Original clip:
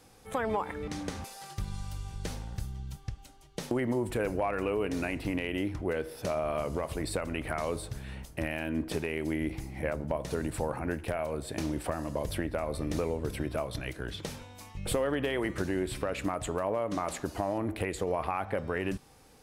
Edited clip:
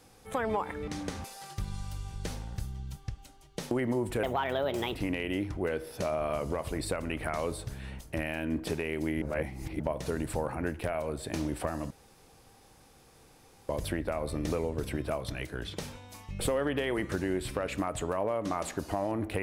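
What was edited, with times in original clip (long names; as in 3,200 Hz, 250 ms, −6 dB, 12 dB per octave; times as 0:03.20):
0:04.23–0:05.19: play speed 134%
0:09.46–0:10.04: reverse
0:12.15: splice in room tone 1.78 s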